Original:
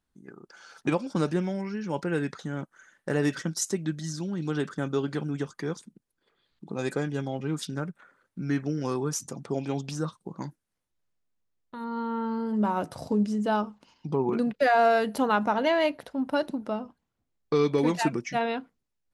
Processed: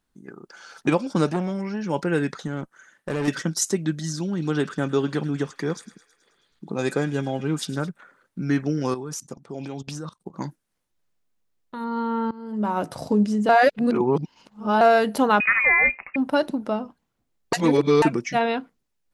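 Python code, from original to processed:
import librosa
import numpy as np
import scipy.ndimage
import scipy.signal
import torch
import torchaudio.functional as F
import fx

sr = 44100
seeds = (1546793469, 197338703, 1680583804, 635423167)

y = fx.transformer_sat(x, sr, knee_hz=690.0, at=(1.29, 1.83))
y = fx.tube_stage(y, sr, drive_db=27.0, bias=0.45, at=(2.47, 3.28))
y = fx.echo_wet_highpass(y, sr, ms=107, feedback_pct=64, hz=1500.0, wet_db=-15, at=(4.22, 7.89))
y = fx.level_steps(y, sr, step_db=19, at=(8.94, 10.34))
y = fx.freq_invert(y, sr, carrier_hz=2700, at=(15.4, 16.16))
y = fx.edit(y, sr, fx.fade_in_from(start_s=12.31, length_s=0.6, floor_db=-21.0),
    fx.reverse_span(start_s=13.49, length_s=1.32),
    fx.reverse_span(start_s=17.53, length_s=0.49), tone=tone)
y = fx.peak_eq(y, sr, hz=82.0, db=-6.0, octaves=0.77)
y = y * librosa.db_to_amplitude(5.5)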